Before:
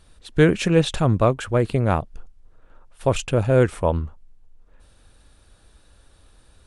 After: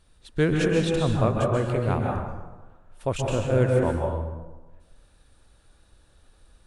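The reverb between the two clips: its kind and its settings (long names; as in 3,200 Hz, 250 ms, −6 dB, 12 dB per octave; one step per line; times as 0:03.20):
dense smooth reverb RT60 1.2 s, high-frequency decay 0.55×, pre-delay 120 ms, DRR 0 dB
level −7 dB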